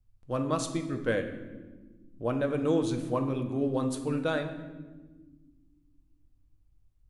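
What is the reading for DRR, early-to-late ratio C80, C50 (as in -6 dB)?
5.0 dB, 11.0 dB, 9.0 dB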